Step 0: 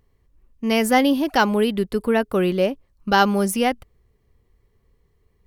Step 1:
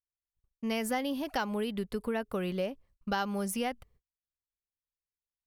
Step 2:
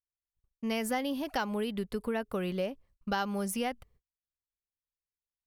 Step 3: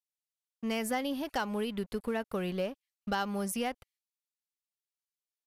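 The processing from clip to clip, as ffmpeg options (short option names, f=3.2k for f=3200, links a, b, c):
-af "agate=range=-37dB:threshold=-50dB:ratio=16:detection=peak,equalizer=f=330:t=o:w=0.45:g=-7,acompressor=threshold=-21dB:ratio=4,volume=-8dB"
-af anull
-filter_complex "[0:a]acrossover=split=2200[a][b];[a]aeval=exprs='sgn(val(0))*max(abs(val(0))-0.00224,0)':c=same[c];[c][b]amix=inputs=2:normalize=0,aresample=32000,aresample=44100,asoftclip=type=hard:threshold=-23dB"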